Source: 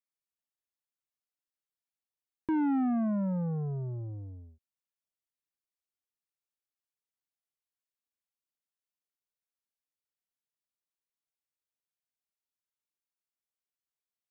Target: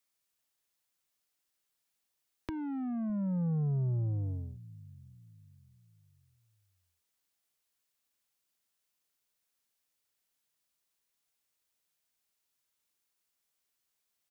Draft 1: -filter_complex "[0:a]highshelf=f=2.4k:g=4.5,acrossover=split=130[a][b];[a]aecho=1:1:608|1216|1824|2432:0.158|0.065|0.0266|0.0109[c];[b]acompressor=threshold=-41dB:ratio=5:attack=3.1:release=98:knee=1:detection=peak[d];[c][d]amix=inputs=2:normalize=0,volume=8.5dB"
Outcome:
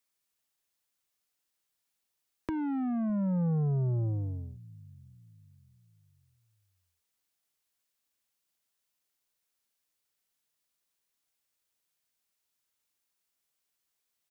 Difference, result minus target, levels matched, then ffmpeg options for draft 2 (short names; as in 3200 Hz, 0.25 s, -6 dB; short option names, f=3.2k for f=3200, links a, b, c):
compressor: peak gain reduction -6.5 dB
-filter_complex "[0:a]highshelf=f=2.4k:g=4.5,acrossover=split=130[a][b];[a]aecho=1:1:608|1216|1824|2432:0.158|0.065|0.0266|0.0109[c];[b]acompressor=threshold=-49dB:ratio=5:attack=3.1:release=98:knee=1:detection=peak[d];[c][d]amix=inputs=2:normalize=0,volume=8.5dB"